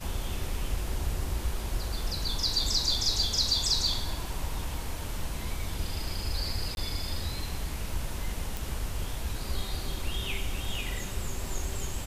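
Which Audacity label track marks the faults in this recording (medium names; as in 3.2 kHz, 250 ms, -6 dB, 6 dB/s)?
6.750000	6.770000	dropout 21 ms
8.570000	8.570000	pop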